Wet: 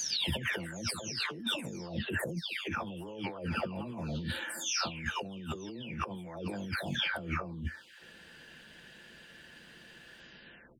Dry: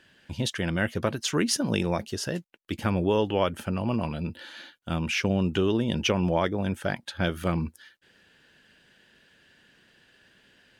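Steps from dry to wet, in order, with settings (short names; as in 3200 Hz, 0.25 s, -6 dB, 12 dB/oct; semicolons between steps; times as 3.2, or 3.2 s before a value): spectral delay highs early, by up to 0.594 s; negative-ratio compressor -38 dBFS, ratio -1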